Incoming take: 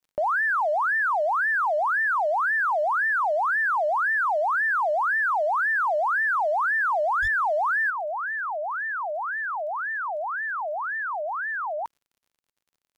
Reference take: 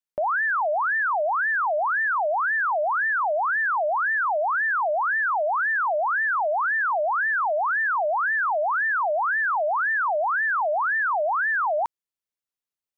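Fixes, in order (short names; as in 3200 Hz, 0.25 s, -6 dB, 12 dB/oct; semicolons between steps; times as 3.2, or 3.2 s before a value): clip repair -20.5 dBFS; de-click; 7.21–7.33 HPF 140 Hz 24 dB/oct; 7.9 gain correction +6 dB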